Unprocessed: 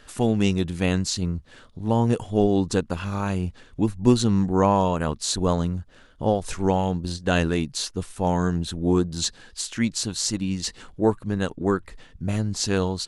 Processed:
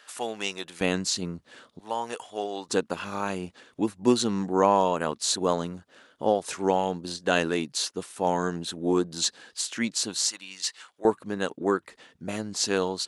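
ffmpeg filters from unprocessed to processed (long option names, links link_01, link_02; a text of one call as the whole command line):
ffmpeg -i in.wav -af "asetnsamples=nb_out_samples=441:pad=0,asendcmd='0.81 highpass f 250;1.8 highpass f 800;2.69 highpass f 290;10.29 highpass f 1100;11.05 highpass f 290',highpass=710" out.wav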